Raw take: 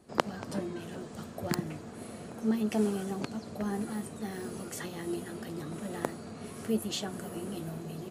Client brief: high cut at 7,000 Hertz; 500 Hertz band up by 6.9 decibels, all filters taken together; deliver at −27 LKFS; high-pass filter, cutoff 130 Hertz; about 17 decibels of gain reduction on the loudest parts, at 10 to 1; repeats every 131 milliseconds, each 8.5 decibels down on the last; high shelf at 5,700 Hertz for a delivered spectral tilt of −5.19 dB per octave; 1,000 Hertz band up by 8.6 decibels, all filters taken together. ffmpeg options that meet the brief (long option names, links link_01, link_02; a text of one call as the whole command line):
ffmpeg -i in.wav -af "highpass=130,lowpass=7000,equalizer=frequency=500:width_type=o:gain=7,equalizer=frequency=1000:width_type=o:gain=8.5,highshelf=frequency=5700:gain=3.5,acompressor=threshold=-32dB:ratio=10,aecho=1:1:131|262|393|524:0.376|0.143|0.0543|0.0206,volume=10.5dB" out.wav